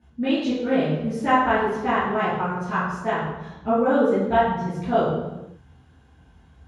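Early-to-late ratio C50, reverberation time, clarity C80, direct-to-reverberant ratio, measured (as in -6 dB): 0.0 dB, 1.0 s, 3.0 dB, -14.5 dB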